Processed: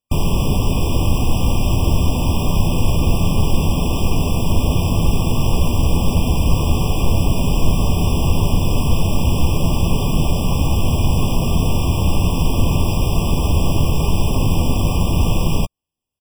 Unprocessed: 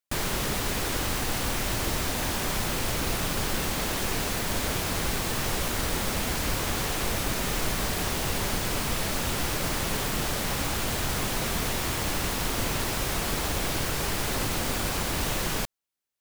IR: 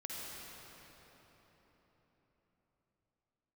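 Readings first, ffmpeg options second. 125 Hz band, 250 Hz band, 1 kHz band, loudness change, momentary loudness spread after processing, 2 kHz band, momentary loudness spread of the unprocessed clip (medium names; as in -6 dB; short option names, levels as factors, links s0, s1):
+16.5 dB, +12.5 dB, +5.5 dB, +9.0 dB, 1 LU, -1.5 dB, 0 LU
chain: -filter_complex "[0:a]bass=f=250:g=11,treble=f=4000:g=-4,asplit=2[s0][s1];[s1]adelay=12,volume=0.299[s2];[s0][s2]amix=inputs=2:normalize=0,afftfilt=real='re*eq(mod(floor(b*sr/1024/1200),2),0)':imag='im*eq(mod(floor(b*sr/1024/1200),2),0)':win_size=1024:overlap=0.75,volume=2"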